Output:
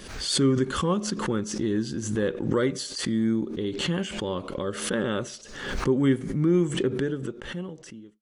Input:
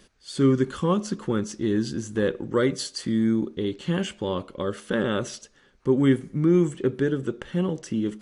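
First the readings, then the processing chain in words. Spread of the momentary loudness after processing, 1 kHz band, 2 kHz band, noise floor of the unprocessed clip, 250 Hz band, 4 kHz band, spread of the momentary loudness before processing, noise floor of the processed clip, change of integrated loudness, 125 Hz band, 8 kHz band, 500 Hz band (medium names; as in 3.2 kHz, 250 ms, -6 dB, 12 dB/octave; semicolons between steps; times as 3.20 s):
12 LU, 0.0 dB, +0.5 dB, -58 dBFS, -2.0 dB, +4.0 dB, 9 LU, -45 dBFS, -1.5 dB, -1.5 dB, +5.0 dB, -2.0 dB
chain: fade out at the end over 1.43 s; swell ahead of each attack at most 59 dB/s; trim -2.5 dB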